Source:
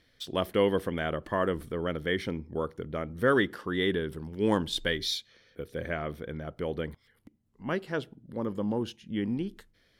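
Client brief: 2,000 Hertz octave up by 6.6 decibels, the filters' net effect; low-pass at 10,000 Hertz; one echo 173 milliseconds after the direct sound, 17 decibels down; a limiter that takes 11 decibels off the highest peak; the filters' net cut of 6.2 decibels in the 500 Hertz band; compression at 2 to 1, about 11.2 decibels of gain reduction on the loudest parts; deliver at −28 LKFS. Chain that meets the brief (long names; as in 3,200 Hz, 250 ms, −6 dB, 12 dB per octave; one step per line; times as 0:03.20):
low-pass filter 10,000 Hz
parametric band 500 Hz −8 dB
parametric band 2,000 Hz +8.5 dB
downward compressor 2 to 1, threshold −39 dBFS
brickwall limiter −31 dBFS
single-tap delay 173 ms −17 dB
level +14.5 dB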